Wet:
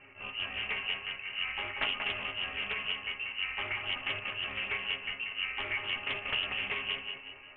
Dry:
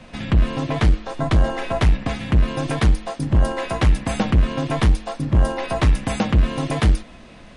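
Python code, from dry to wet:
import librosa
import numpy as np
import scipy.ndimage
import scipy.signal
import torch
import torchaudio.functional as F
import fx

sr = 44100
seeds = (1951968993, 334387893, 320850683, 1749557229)

y = fx.highpass(x, sr, hz=44.0, slope=6)
y = fx.low_shelf(y, sr, hz=320.0, db=-8.0)
y = fx.auto_swell(y, sr, attack_ms=110.0)
y = fx.resonator_bank(y, sr, root=49, chord='minor', decay_s=0.23)
y = fx.echo_feedback(y, sr, ms=187, feedback_pct=42, wet_db=-5)
y = fx.freq_invert(y, sr, carrier_hz=2900)
y = fx.doppler_dist(y, sr, depth_ms=0.24)
y = F.gain(torch.from_numpy(y), 6.0).numpy()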